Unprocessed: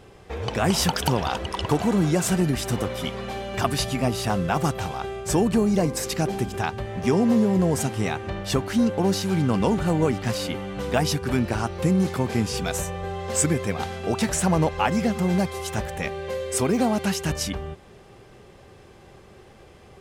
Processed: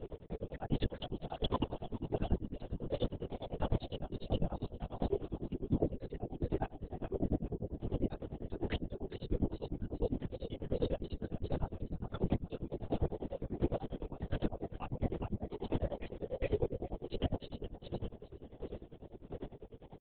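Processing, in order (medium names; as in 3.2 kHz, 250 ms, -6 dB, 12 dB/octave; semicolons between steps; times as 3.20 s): resonances exaggerated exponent 1.5; high-order bell 1.5 kHz -9 dB; peak limiter -16 dBFS, peak gain reduction 8 dB; compression 10:1, threshold -35 dBFS, peak gain reduction 15.5 dB; granulator 76 ms, grains 10 per s, spray 22 ms, pitch spread up and down by 0 st; feedback delay 410 ms, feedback 30%, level -5 dB; square tremolo 1.4 Hz, depth 60%, duty 30%; LPC vocoder at 8 kHz whisper; trim +9 dB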